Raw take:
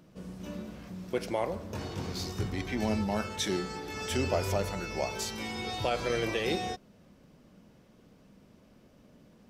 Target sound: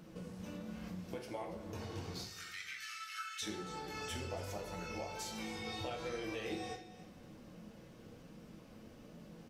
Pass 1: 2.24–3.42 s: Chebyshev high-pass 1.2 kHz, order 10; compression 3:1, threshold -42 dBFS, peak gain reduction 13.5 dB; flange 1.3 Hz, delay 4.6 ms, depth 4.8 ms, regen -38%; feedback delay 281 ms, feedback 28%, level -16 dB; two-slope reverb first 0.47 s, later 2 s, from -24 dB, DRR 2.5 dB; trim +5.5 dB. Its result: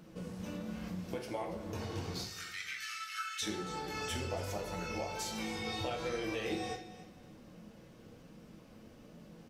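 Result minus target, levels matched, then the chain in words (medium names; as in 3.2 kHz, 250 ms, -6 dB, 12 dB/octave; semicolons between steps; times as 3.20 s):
compression: peak gain reduction -4.5 dB
2.24–3.42 s: Chebyshev high-pass 1.2 kHz, order 10; compression 3:1, threshold -48.5 dBFS, peak gain reduction 18 dB; flange 1.3 Hz, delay 4.6 ms, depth 4.8 ms, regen -38%; feedback delay 281 ms, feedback 28%, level -16 dB; two-slope reverb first 0.47 s, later 2 s, from -24 dB, DRR 2.5 dB; trim +5.5 dB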